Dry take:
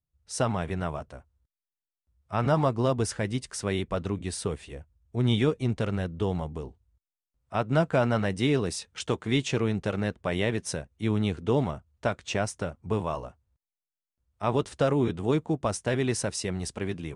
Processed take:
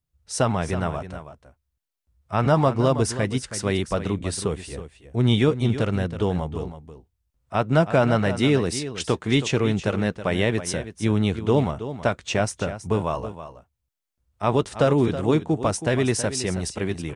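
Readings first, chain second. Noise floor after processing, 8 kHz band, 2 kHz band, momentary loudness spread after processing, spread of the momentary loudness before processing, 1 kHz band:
-79 dBFS, +5.5 dB, +5.0 dB, 11 LU, 10 LU, +5.0 dB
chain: echo 0.323 s -12 dB; gain +5 dB

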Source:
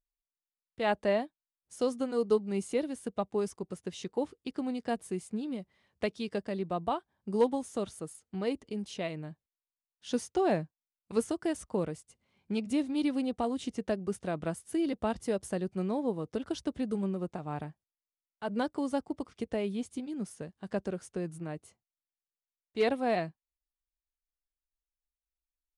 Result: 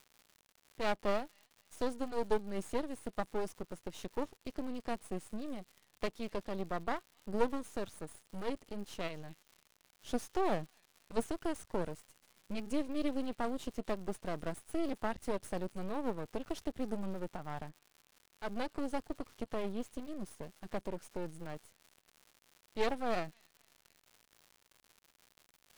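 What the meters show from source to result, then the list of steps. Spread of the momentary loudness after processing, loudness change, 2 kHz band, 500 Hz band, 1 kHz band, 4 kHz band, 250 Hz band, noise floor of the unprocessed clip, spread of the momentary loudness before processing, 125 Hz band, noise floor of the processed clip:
11 LU, -6.0 dB, -3.5 dB, -6.0 dB, -3.0 dB, -4.5 dB, -7.0 dB, under -85 dBFS, 11 LU, -7.0 dB, -73 dBFS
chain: thin delay 0.262 s, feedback 36%, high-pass 2700 Hz, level -20 dB; crackle 310/s -46 dBFS; half-wave rectifier; gain -1 dB

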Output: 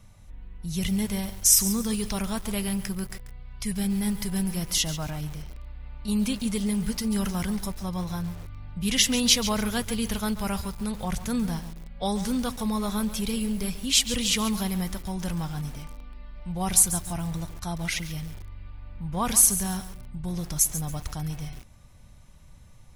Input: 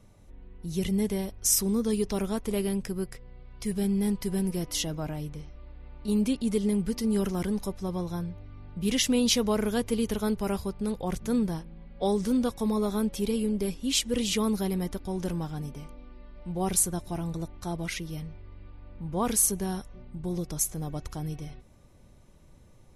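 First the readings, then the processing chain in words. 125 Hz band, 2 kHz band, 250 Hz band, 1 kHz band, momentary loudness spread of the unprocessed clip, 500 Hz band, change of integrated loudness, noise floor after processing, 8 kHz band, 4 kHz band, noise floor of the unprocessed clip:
+2.0 dB, +5.5 dB, 0.0 dB, +2.5 dB, 15 LU, -5.5 dB, +3.0 dB, -49 dBFS, +6.0 dB, +6.0 dB, -54 dBFS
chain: bell 380 Hz -14 dB 1.4 oct; lo-fi delay 0.139 s, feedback 35%, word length 7-bit, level -11.5 dB; gain +6 dB

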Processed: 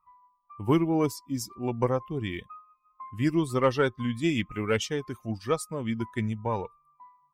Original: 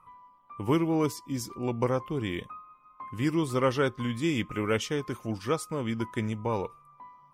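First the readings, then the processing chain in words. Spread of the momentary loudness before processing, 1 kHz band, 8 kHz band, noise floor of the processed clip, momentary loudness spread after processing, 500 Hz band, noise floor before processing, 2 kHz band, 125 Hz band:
11 LU, +1.0 dB, +1.0 dB, -70 dBFS, 11 LU, +1.0 dB, -59 dBFS, +1.0 dB, +1.0 dB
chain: per-bin expansion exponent 1.5; added harmonics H 4 -29 dB, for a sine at -13.5 dBFS; gain +3.5 dB

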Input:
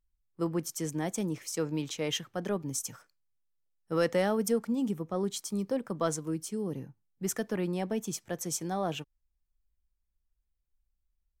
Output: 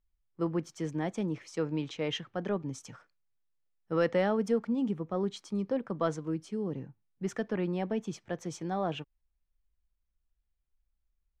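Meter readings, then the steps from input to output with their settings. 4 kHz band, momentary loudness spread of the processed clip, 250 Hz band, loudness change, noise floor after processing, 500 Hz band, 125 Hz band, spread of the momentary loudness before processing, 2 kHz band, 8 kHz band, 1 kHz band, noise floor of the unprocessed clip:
-3.5 dB, 10 LU, 0.0 dB, -0.5 dB, -80 dBFS, 0.0 dB, 0.0 dB, 7 LU, -0.5 dB, -14.0 dB, 0.0 dB, -80 dBFS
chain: LPF 3300 Hz 12 dB/oct

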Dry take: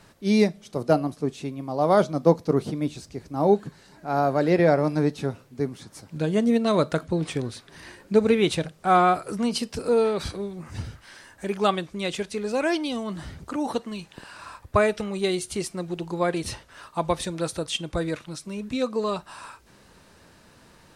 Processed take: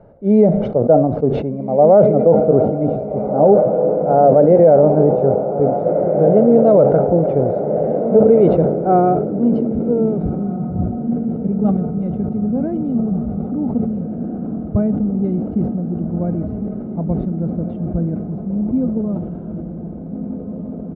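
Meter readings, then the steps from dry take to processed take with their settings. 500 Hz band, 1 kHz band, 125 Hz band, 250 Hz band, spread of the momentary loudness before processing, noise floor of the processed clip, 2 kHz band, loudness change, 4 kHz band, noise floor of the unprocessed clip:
+11.0 dB, +5.5 dB, +10.5 dB, +10.0 dB, 17 LU, -28 dBFS, under -10 dB, +9.0 dB, under -20 dB, -55 dBFS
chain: low shelf 380 Hz -6.5 dB; comb 1.4 ms, depth 48%; diffused feedback echo 1.644 s, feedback 73%, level -9 dB; low-pass sweep 500 Hz -> 240 Hz, 8.18–10.59; air absorption 150 m; maximiser +12.5 dB; sustainer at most 53 dB/s; gain -1.5 dB

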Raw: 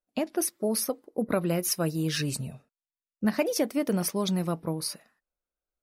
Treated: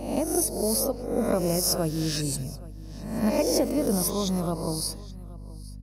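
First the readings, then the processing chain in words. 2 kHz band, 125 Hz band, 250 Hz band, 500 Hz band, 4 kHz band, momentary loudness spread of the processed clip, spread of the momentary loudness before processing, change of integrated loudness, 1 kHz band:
-4.5 dB, +1.5 dB, +2.0 dB, +3.0 dB, +3.0 dB, 18 LU, 6 LU, +3.0 dB, +3.0 dB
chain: spectral swells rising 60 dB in 0.77 s; band shelf 2200 Hz -9 dB; on a send: echo 0.825 s -21.5 dB; on the sum: hum 50 Hz, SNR 12 dB; speakerphone echo 0.22 s, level -16 dB

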